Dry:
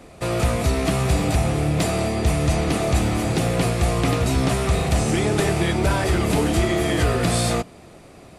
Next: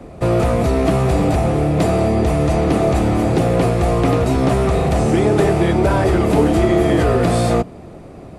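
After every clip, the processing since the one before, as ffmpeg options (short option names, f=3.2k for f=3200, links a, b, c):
-filter_complex "[0:a]tiltshelf=f=1.4k:g=7.5,acrossover=split=300|840[a][b][c];[a]alimiter=limit=-16dB:level=0:latency=1[d];[d][b][c]amix=inputs=3:normalize=0,volume=2.5dB"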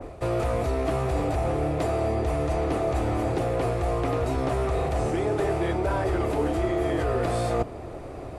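-af "equalizer=f=190:t=o:w=0.79:g=-13.5,areverse,acompressor=threshold=-26dB:ratio=4,areverse,adynamicequalizer=threshold=0.00316:dfrequency=2200:dqfactor=0.7:tfrequency=2200:tqfactor=0.7:attack=5:release=100:ratio=0.375:range=2:mode=cutabove:tftype=highshelf,volume=2dB"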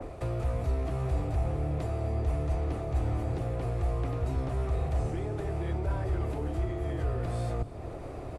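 -filter_complex "[0:a]acrossover=split=160[a][b];[b]acompressor=threshold=-40dB:ratio=3[c];[a][c]amix=inputs=2:normalize=0,aecho=1:1:259:0.133"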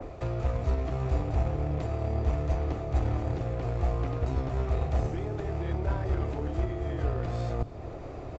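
-filter_complex "[0:a]asplit=2[a][b];[b]acrusher=bits=3:mix=0:aa=0.5,volume=-9.5dB[c];[a][c]amix=inputs=2:normalize=0,aresample=16000,aresample=44100"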